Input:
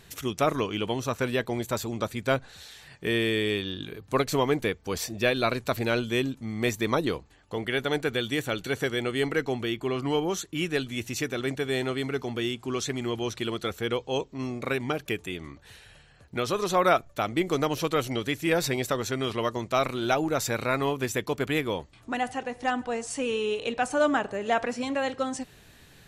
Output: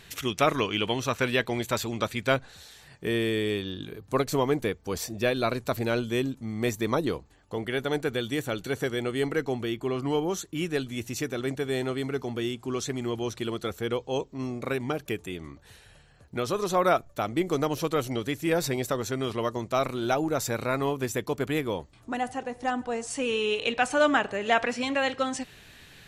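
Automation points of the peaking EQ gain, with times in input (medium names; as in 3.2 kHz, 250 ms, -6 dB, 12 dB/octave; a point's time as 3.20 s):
peaking EQ 2.6 kHz 1.9 oct
2.20 s +6 dB
2.64 s -4.5 dB
22.80 s -4.5 dB
23.53 s +6.5 dB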